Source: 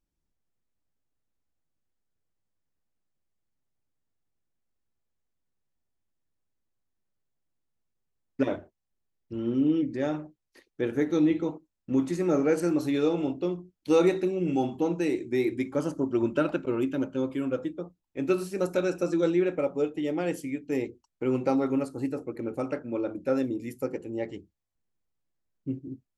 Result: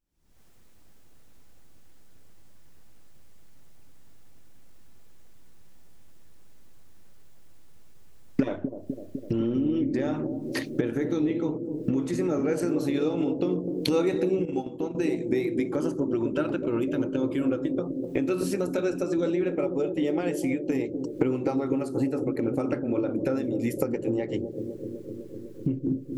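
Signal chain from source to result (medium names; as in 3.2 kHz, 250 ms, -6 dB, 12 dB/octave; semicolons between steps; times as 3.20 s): recorder AGC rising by 76 dB/s; bucket-brigade echo 252 ms, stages 1024, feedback 79%, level -7.5 dB; 14.45–14.95 s: gate -21 dBFS, range -11 dB; trim -3.5 dB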